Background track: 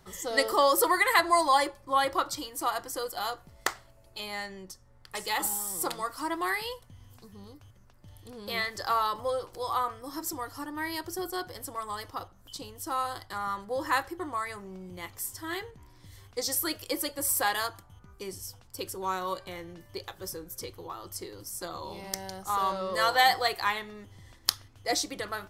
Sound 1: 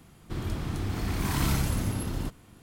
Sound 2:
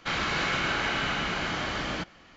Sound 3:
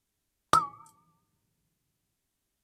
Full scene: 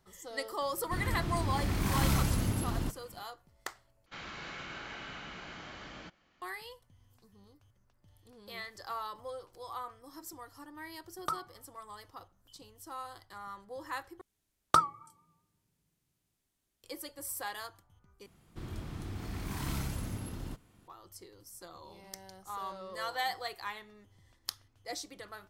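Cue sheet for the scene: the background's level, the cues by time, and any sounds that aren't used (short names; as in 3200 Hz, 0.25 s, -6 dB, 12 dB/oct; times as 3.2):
background track -12 dB
0.61 add 1 -2 dB
4.06 replace with 2 -16 dB
10.75 add 3 -12 dB
14.21 replace with 3 -1.5 dB
18.26 replace with 1 -9.5 dB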